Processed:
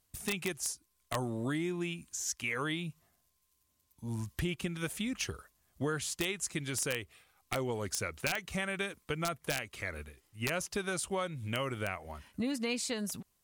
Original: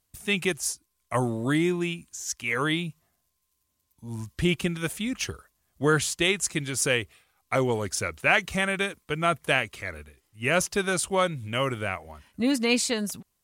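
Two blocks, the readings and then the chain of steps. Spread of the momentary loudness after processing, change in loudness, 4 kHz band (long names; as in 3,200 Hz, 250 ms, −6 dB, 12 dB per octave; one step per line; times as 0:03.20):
6 LU, −9.5 dB, −9.0 dB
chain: downward compressor 4 to 1, threshold −33 dBFS, peak gain reduction 14.5 dB
wrap-around overflow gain 22 dB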